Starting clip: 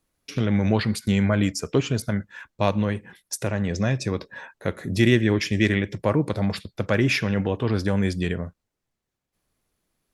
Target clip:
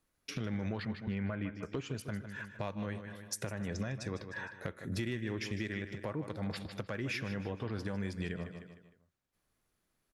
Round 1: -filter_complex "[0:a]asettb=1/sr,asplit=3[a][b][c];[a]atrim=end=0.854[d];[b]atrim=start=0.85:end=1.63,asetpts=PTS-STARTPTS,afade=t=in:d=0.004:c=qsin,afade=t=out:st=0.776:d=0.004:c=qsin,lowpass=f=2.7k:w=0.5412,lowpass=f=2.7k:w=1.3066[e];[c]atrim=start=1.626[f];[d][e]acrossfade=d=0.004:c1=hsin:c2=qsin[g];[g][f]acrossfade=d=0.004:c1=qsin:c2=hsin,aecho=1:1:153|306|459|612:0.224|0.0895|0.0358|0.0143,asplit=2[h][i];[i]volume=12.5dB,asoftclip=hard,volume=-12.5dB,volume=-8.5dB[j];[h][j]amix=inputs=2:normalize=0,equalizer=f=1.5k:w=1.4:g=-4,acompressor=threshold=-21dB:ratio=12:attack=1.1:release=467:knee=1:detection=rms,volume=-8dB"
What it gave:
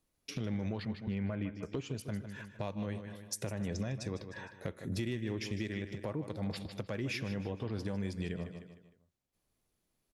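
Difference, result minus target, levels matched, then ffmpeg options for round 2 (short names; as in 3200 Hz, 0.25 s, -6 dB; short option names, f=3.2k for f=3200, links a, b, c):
2000 Hz band -4.0 dB
-filter_complex "[0:a]asettb=1/sr,asplit=3[a][b][c];[a]atrim=end=0.854[d];[b]atrim=start=0.85:end=1.63,asetpts=PTS-STARTPTS,afade=t=in:d=0.004:c=qsin,afade=t=out:st=0.776:d=0.004:c=qsin,lowpass=f=2.7k:w=0.5412,lowpass=f=2.7k:w=1.3066[e];[c]atrim=start=1.626[f];[d][e]acrossfade=d=0.004:c1=hsin:c2=qsin[g];[g][f]acrossfade=d=0.004:c1=qsin:c2=hsin,aecho=1:1:153|306|459|612:0.224|0.0895|0.0358|0.0143,asplit=2[h][i];[i]volume=12.5dB,asoftclip=hard,volume=-12.5dB,volume=-8.5dB[j];[h][j]amix=inputs=2:normalize=0,equalizer=f=1.5k:w=1.4:g=3.5,acompressor=threshold=-21dB:ratio=12:attack=1.1:release=467:knee=1:detection=rms,volume=-8dB"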